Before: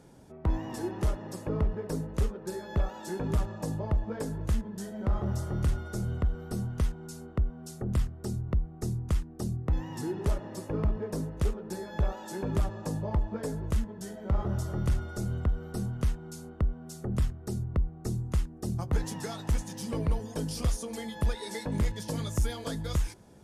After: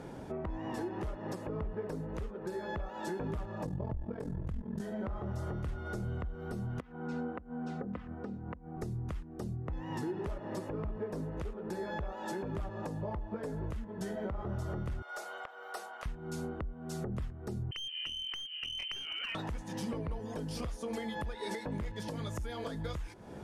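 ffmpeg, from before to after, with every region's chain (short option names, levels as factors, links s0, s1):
-filter_complex "[0:a]asettb=1/sr,asplit=3[s0][s1][s2];[s0]atrim=end=3.654[s3];[s1]atrim=start=3.65:end=4.81,asetpts=PTS-STARTPTS,afade=t=in:d=0.004:c=qsin,afade=t=out:st=1.156:d=0.004:c=qsin,lowshelf=f=300:g=11.5,acompressor=threshold=0.158:ratio=2.5:attack=3.2:release=140:knee=1:detection=peak,aeval=exprs='val(0)*sin(2*PI*21*n/s)':c=same[s4];[s2]atrim=start=4.806[s5];[s3][s4]acrossfade=d=0.004:c1=hsin:c2=qsin[s6];[s6][s5]acrossfade=d=0.004:c1=qsin:c2=hsin,asettb=1/sr,asplit=3[s7][s8][s9];[s7]atrim=end=6.804[s10];[s8]atrim=start=6.8:end=8.77,asetpts=PTS-STARTPTS,afade=t=in:d=0.004:c=qsin,afade=t=out:st=1.966:d=0.004:c=qsin,acompressor=threshold=0.02:ratio=10:attack=3.2:release=140:knee=1:detection=peak,highpass=120,lowpass=2400,aecho=1:1:4:0.64,atrim=end_sample=86877[s11];[s9]atrim=start=8.766[s12];[s10][s11]acrossfade=d=0.004:c1=hsin:c2=qsin[s13];[s13][s12]acrossfade=d=0.004:c1=qsin:c2=hsin,asettb=1/sr,asplit=3[s14][s15][s16];[s14]atrim=end=15.024[s17];[s15]atrim=start=15.02:end=16.06,asetpts=PTS-STARTPTS,afade=t=in:d=0.004:c=qsin,afade=t=out:st=1.036:d=0.004:c=qsin,highpass=f=660:w=0.5412,highpass=f=660:w=1.3066,aeval=exprs='clip(val(0),-1,0.0119)':c=same[s18];[s16]atrim=start=16.056[s19];[s17][s18]acrossfade=d=0.004:c1=hsin:c2=qsin[s20];[s20][s19]acrossfade=d=0.004:c1=qsin:c2=hsin,asettb=1/sr,asplit=3[s21][s22][s23];[s21]atrim=end=17.714[s24];[s22]atrim=start=17.71:end=19.35,asetpts=PTS-STARTPTS,afade=t=in:d=0.004:c=qsin,afade=t=out:st=1.636:d=0.004:c=qsin,lowpass=f=2700:t=q:w=0.5098,lowpass=f=2700:t=q:w=0.6013,lowpass=f=2700:t=q:w=0.9,lowpass=f=2700:t=q:w=2.563,afreqshift=-3200,aeval=exprs='clip(val(0),-1,0.0251)':c=same,acompressor=threshold=0.00708:ratio=8:attack=3.2:release=140:knee=1:detection=peak[s25];[s23]atrim=start=19.346[s26];[s24][s25]acrossfade=d=0.004:c1=hsin:c2=qsin[s27];[s27][s26]acrossfade=d=0.004:c1=qsin:c2=hsin,bass=f=250:g=-4,treble=f=4000:g=-12,acompressor=threshold=0.00708:ratio=2.5,alimiter=level_in=6.31:limit=0.0631:level=0:latency=1:release=424,volume=0.158,volume=3.76"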